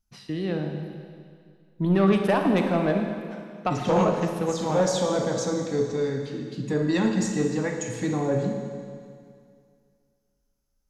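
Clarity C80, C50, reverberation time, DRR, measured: 6.0 dB, 5.0 dB, 2.2 s, 4.0 dB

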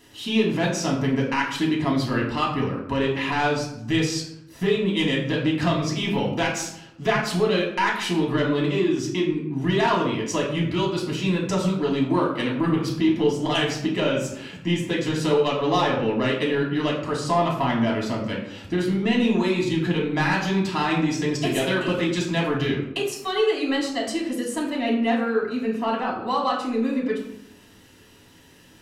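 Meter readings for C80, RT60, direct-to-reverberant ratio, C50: 8.0 dB, 0.80 s, -3.0 dB, 5.5 dB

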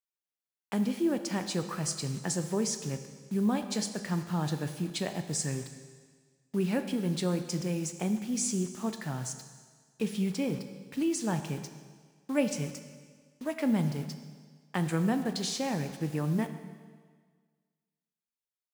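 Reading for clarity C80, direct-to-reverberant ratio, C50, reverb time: 10.5 dB, 8.0 dB, 9.5 dB, 1.6 s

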